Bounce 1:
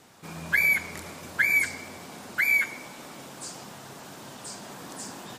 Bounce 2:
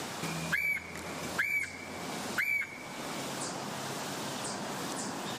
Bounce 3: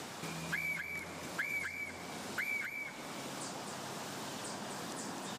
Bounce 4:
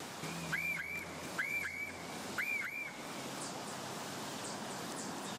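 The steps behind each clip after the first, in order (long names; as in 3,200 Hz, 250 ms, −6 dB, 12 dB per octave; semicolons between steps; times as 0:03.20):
high-shelf EQ 12,000 Hz −10.5 dB; multiband upward and downward compressor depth 100%; level −4 dB
single-tap delay 260 ms −5.5 dB; level −6.5 dB
pitch vibrato 3.3 Hz 57 cents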